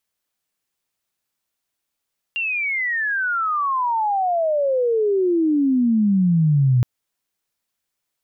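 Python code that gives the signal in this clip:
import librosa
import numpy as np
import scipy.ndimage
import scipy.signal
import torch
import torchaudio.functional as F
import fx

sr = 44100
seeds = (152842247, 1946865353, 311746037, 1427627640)

y = fx.chirp(sr, length_s=4.47, from_hz=2800.0, to_hz=120.0, law='logarithmic', from_db=-20.5, to_db=-12.5)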